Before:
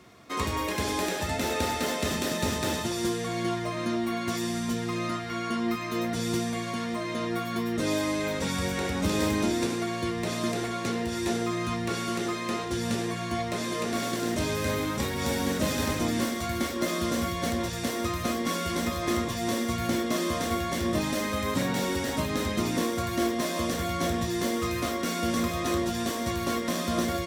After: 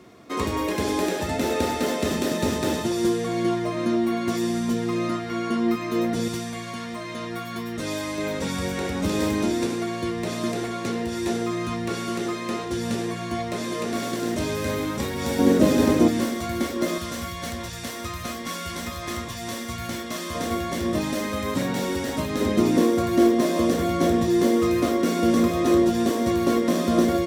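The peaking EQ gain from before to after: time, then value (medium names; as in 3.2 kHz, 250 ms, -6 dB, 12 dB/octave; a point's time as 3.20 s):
peaking EQ 340 Hz 2 oct
+7.5 dB
from 6.28 s -3 dB
from 8.18 s +3.5 dB
from 15.39 s +14.5 dB
from 16.08 s +5 dB
from 16.98 s -6.5 dB
from 20.35 s +3.5 dB
from 22.41 s +11 dB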